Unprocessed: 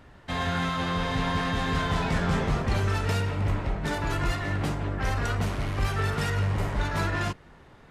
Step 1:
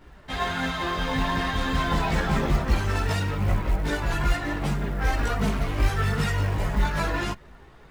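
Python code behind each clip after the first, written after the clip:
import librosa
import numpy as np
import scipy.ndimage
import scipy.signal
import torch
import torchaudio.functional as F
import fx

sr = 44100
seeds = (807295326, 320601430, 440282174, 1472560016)

y = fx.chorus_voices(x, sr, voices=6, hz=0.38, base_ms=17, depth_ms=3.2, mix_pct=60)
y = fx.quant_float(y, sr, bits=4)
y = y * 10.0 ** (4.5 / 20.0)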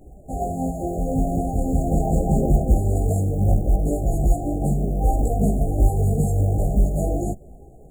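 y = fx.brickwall_bandstop(x, sr, low_hz=820.0, high_hz=6600.0)
y = y * 10.0 ** (5.5 / 20.0)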